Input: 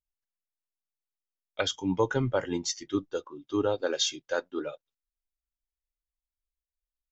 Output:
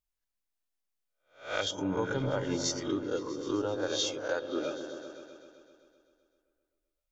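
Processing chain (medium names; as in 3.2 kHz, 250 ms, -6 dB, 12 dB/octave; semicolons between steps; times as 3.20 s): reverse spectral sustain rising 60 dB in 0.38 s; compression, threshold -30 dBFS, peak gain reduction 10.5 dB; on a send: delay with an opening low-pass 129 ms, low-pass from 400 Hz, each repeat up 1 oct, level -6 dB; on the sum: trim +1.5 dB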